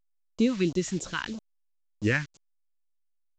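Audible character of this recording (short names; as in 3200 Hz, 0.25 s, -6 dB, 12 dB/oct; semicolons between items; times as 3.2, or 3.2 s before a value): a quantiser's noise floor 8-bit, dither none; phasing stages 2, 3.1 Hz, lowest notch 440–1800 Hz; A-law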